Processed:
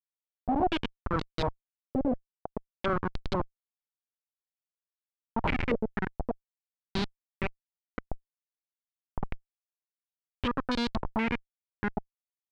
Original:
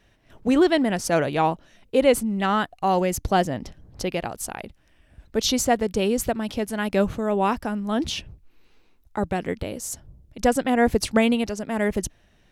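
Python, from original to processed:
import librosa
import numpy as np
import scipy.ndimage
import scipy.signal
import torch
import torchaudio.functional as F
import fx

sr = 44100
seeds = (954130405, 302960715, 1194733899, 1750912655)

y = fx.formant_shift(x, sr, semitones=-5)
y = fx.schmitt(y, sr, flips_db=-17.5)
y = fx.filter_held_lowpass(y, sr, hz=4.2, low_hz=550.0, high_hz=4100.0)
y = y * librosa.db_to_amplitude(-4.0)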